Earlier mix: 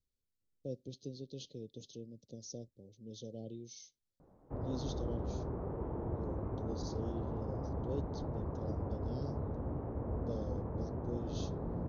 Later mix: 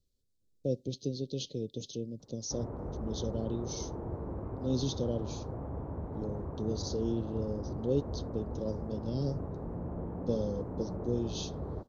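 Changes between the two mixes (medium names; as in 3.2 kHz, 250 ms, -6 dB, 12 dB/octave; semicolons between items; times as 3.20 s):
speech +10.0 dB; background: entry -2.00 s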